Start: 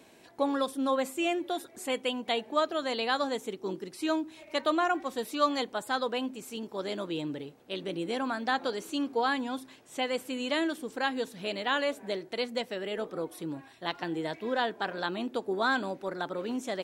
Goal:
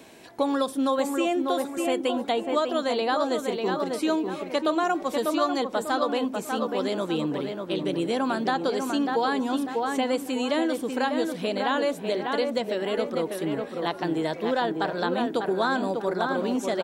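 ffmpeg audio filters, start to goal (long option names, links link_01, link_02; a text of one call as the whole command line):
ffmpeg -i in.wav -filter_complex "[0:a]asplit=2[link_01][link_02];[link_02]adelay=595,lowpass=frequency=1800:poles=1,volume=-5dB,asplit=2[link_03][link_04];[link_04]adelay=595,lowpass=frequency=1800:poles=1,volume=0.38,asplit=2[link_05][link_06];[link_06]adelay=595,lowpass=frequency=1800:poles=1,volume=0.38,asplit=2[link_07][link_08];[link_08]adelay=595,lowpass=frequency=1800:poles=1,volume=0.38,asplit=2[link_09][link_10];[link_10]adelay=595,lowpass=frequency=1800:poles=1,volume=0.38[link_11];[link_01][link_03][link_05][link_07][link_09][link_11]amix=inputs=6:normalize=0,acrossover=split=1400|3500[link_12][link_13][link_14];[link_12]acompressor=threshold=-29dB:ratio=4[link_15];[link_13]acompressor=threshold=-49dB:ratio=4[link_16];[link_14]acompressor=threshold=-46dB:ratio=4[link_17];[link_15][link_16][link_17]amix=inputs=3:normalize=0,volume=7.5dB" out.wav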